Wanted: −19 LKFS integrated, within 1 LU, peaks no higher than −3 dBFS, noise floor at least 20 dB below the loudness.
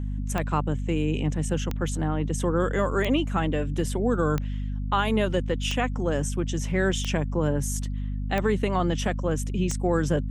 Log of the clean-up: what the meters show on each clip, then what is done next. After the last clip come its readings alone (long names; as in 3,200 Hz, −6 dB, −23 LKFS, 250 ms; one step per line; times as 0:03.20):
number of clicks 8; mains hum 50 Hz; hum harmonics up to 250 Hz; level of the hum −27 dBFS; integrated loudness −26.5 LKFS; sample peak −11.0 dBFS; target loudness −19.0 LKFS
→ click removal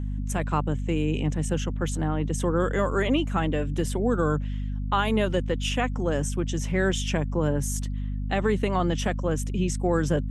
number of clicks 0; mains hum 50 Hz; hum harmonics up to 250 Hz; level of the hum −27 dBFS
→ mains-hum notches 50/100/150/200/250 Hz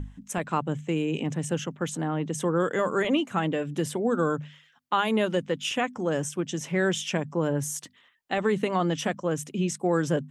mains hum none found; integrated loudness −28.0 LKFS; sample peak −12.5 dBFS; target loudness −19.0 LKFS
→ level +9 dB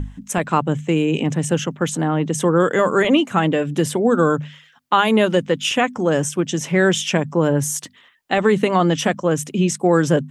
integrated loudness −19.0 LKFS; sample peak −3.5 dBFS; background noise floor −52 dBFS